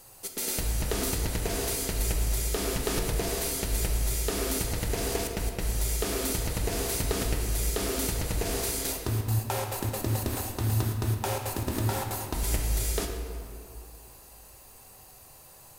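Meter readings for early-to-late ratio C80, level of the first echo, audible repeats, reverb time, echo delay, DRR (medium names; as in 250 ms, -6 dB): 5.5 dB, no echo, no echo, 2.3 s, no echo, 2.5 dB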